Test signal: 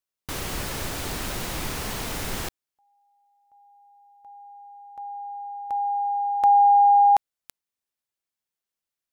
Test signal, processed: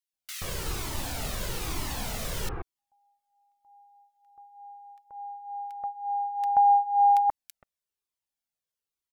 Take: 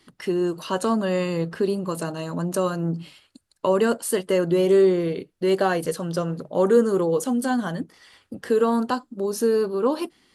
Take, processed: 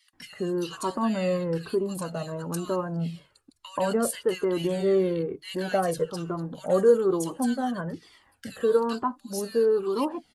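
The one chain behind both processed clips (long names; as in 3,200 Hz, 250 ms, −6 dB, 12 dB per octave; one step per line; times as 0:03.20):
multiband delay without the direct sound highs, lows 130 ms, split 1,700 Hz
flanger whose copies keep moving one way falling 1.1 Hz
level +1.5 dB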